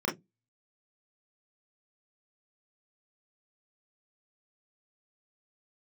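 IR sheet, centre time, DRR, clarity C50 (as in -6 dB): 29 ms, -4.0 dB, 14.0 dB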